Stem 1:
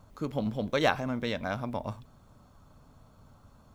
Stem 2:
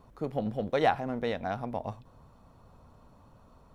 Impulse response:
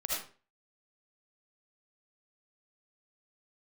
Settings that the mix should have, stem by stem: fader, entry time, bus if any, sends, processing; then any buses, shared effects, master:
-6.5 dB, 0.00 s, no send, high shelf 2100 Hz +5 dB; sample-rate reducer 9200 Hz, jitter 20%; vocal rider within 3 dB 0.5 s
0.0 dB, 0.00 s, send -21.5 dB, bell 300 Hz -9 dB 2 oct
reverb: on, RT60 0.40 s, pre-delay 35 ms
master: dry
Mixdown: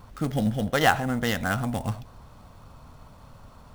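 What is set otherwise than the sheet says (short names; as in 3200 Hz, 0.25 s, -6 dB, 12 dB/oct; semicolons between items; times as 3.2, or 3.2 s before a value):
stem 1 -6.5 dB -> +0.5 dB; stem 2 0.0 dB -> +8.5 dB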